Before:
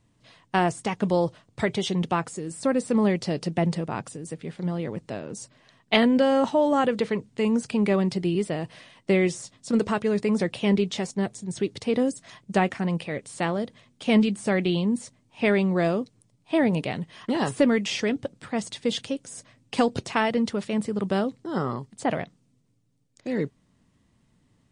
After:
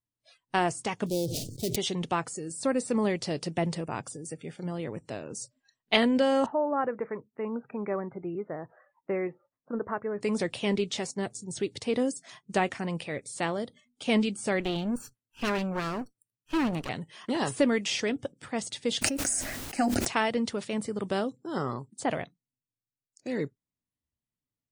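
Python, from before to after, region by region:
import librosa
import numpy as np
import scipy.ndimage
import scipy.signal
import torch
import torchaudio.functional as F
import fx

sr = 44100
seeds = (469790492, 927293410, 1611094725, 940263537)

y = fx.chain(x, sr, fx.dead_time(dead_ms=0.15),
    fx.cheby1_bandstop(low_hz=400.0, high_hz=4300.0, order=2),
    fx.sustainer(db_per_s=47.0), at=(1.06, 1.76))
y = fx.chain(y, sr, fx.lowpass(hz=1600.0, slope=24),
    fx.low_shelf(hz=400.0, db=-8.5), at=(6.46, 10.21))
y = fx.chain(y, sr, fx.lower_of_two(delay_ms=0.67),
    fx.high_shelf(hz=3900.0, db=-4.5), at=(14.6, 16.89))
y = fx.fixed_phaser(y, sr, hz=690.0, stages=8, at=(19.01, 20.06), fade=0.02)
y = fx.dmg_noise_colour(y, sr, seeds[0], colour='pink', level_db=-63.0, at=(19.01, 20.06), fade=0.02)
y = fx.sustainer(y, sr, db_per_s=21.0, at=(19.01, 20.06), fade=0.02)
y = fx.peak_eq(y, sr, hz=190.0, db=-5.0, octaves=0.41)
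y = fx.noise_reduce_blind(y, sr, reduce_db=26)
y = fx.high_shelf(y, sr, hz=4200.0, db=6.0)
y = F.gain(torch.from_numpy(y), -3.5).numpy()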